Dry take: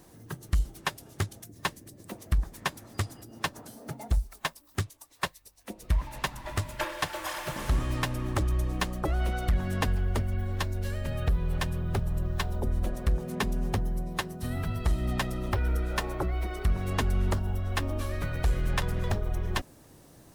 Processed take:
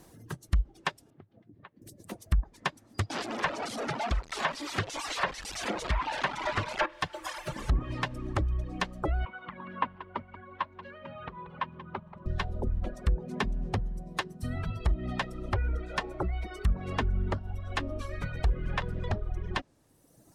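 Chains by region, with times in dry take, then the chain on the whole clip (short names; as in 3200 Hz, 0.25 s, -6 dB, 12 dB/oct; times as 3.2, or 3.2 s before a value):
1.1–1.82 compressor 8:1, threshold -43 dBFS + BPF 100–3600 Hz + air absorption 340 m
3.1–6.86 delta modulation 64 kbps, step -34 dBFS + bell 88 Hz -3.5 dB 0.26 oct + overdrive pedal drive 22 dB, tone 3000 Hz, clips at -17 dBFS
9.25–12.26 speaker cabinet 280–2800 Hz, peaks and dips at 300 Hz -4 dB, 440 Hz -9 dB, 700 Hz -8 dB, 1000 Hz +10 dB, 1800 Hz -5 dB, 2600 Hz -3 dB + echo 0.183 s -11 dB
whole clip: reverb removal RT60 1.5 s; treble ducked by the level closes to 1400 Hz, closed at -22 dBFS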